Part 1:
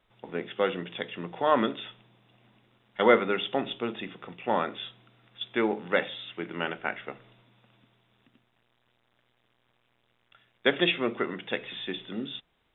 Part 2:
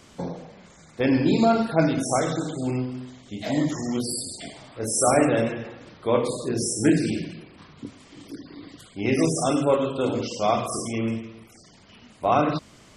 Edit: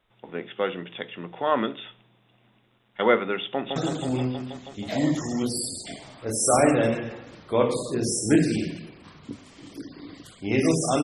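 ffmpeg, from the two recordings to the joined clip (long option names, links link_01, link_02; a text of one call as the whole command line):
ffmpeg -i cue0.wav -i cue1.wav -filter_complex "[0:a]apad=whole_dur=11.03,atrim=end=11.03,atrim=end=3.762[link_01];[1:a]atrim=start=2.298:end=9.57[link_02];[link_01][link_02]acrossfade=duration=0.004:curve1=hsin:curve2=hsin,asplit=2[link_03][link_04];[link_04]afade=type=in:start_time=3.51:duration=0.01,afade=type=out:start_time=3.76:duration=0.01,aecho=0:1:160|320|480|640|800|960|1120|1280|1440|1600|1760|1920:0.595662|0.47653|0.381224|0.304979|0.243983|0.195187|0.156149|0.124919|0.0999355|0.0799484|0.0639587|0.051167[link_05];[link_03][link_05]amix=inputs=2:normalize=0" out.wav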